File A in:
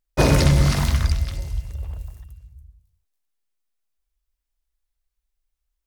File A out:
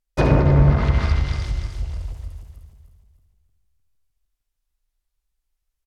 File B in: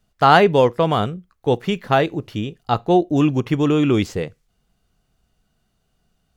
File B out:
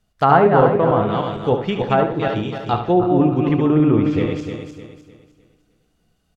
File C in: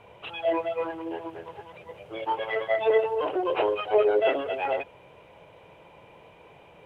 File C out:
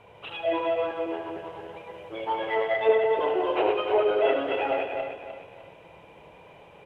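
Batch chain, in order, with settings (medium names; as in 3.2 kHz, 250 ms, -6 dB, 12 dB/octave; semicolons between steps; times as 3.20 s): backward echo that repeats 152 ms, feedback 59%, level -4 dB; low-pass that closes with the level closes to 1.3 kHz, closed at -10.5 dBFS; feedback delay 72 ms, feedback 28%, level -9 dB; trim -1 dB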